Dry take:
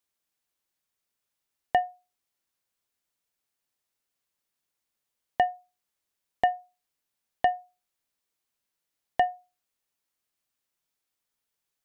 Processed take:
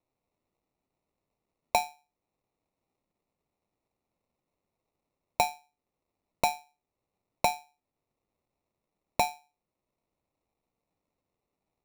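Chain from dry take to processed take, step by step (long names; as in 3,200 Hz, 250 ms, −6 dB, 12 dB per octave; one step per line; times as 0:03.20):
treble cut that deepens with the level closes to 720 Hz, closed at −28.5 dBFS
sample-rate reduction 1,600 Hz, jitter 0%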